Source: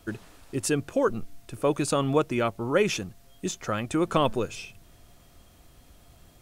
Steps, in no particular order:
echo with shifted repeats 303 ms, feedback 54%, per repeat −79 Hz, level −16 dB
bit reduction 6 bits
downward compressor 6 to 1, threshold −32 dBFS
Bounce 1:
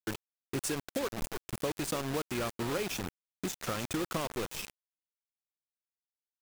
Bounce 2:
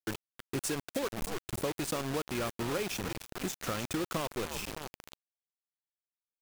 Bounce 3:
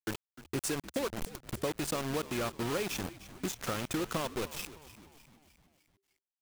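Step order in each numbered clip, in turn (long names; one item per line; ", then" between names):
downward compressor, then echo with shifted repeats, then bit reduction
echo with shifted repeats, then downward compressor, then bit reduction
downward compressor, then bit reduction, then echo with shifted repeats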